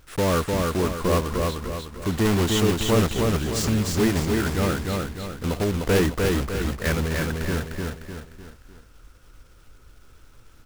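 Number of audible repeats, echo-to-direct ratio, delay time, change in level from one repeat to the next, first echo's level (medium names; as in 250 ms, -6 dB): 4, -2.0 dB, 302 ms, -7.0 dB, -3.0 dB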